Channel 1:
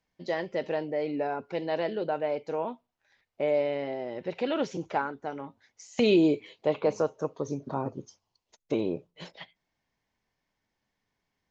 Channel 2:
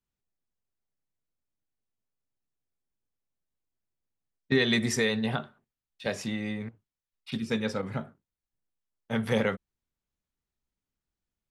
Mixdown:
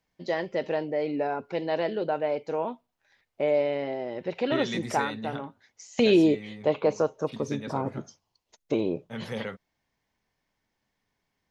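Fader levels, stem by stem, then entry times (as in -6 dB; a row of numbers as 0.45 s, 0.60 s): +2.0 dB, -8.0 dB; 0.00 s, 0.00 s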